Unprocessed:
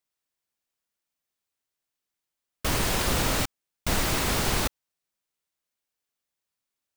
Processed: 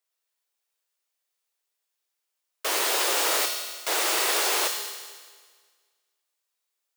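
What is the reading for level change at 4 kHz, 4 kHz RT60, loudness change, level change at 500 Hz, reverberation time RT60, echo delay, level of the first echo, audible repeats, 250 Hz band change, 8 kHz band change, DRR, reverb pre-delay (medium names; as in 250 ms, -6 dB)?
+4.0 dB, 1.6 s, +2.5 dB, +1.5 dB, 1.6 s, no echo, no echo, no echo, -10.0 dB, +4.5 dB, 3.5 dB, 5 ms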